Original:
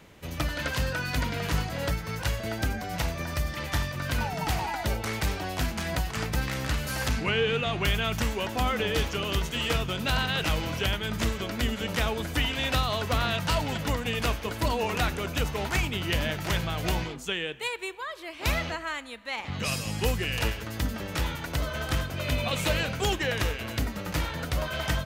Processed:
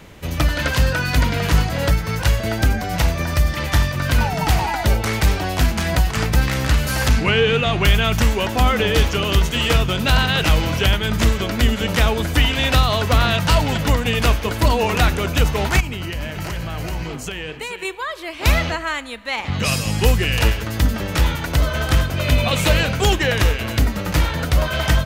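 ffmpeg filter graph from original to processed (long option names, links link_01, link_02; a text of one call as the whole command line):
ffmpeg -i in.wav -filter_complex "[0:a]asettb=1/sr,asplit=3[link_01][link_02][link_03];[link_01]atrim=end=15.804[link_04];[link_02]atrim=start=15.8:end=17.85,asetpts=PTS-STARTPTS,afade=type=in:duration=0.004:curve=qsin,afade=type=out:start_time=2.046:duration=0.004:curve=qsin,bandreject=frequency=3500:width=7,acompressor=threshold=-33dB:ratio=12:attack=3.2:release=140:knee=1:detection=peak,aecho=1:1:429:0.299,atrim=end_sample=90405[link_05];[link_03]atrim=start=17.846[link_06];[link_04][link_05]acrossfade=duration=0.004:curve1=hsin:curve2=qsin[link_07];[link_07][link_06]acrossfade=duration=0.004:curve1=qsin:curve2=hsin,lowshelf=frequency=78:gain=7,acontrast=87,volume=2dB" out.wav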